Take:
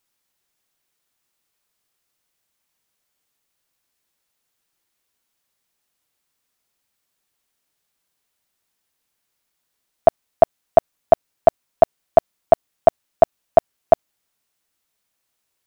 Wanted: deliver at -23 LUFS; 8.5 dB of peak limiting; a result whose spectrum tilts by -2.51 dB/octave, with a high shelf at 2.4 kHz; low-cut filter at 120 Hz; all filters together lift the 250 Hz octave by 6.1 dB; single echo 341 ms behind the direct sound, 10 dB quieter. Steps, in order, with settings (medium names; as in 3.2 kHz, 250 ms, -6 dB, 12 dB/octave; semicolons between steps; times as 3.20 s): high-pass 120 Hz; peaking EQ 250 Hz +8 dB; treble shelf 2.4 kHz +4.5 dB; peak limiter -7 dBFS; delay 341 ms -10 dB; trim +1.5 dB